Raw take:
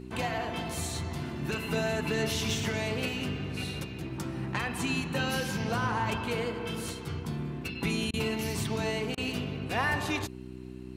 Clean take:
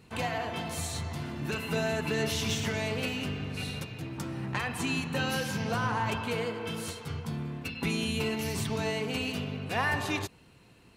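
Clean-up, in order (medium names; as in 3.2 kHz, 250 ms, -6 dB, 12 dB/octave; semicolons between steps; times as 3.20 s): de-hum 63 Hz, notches 6; interpolate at 8.11/9.15 s, 25 ms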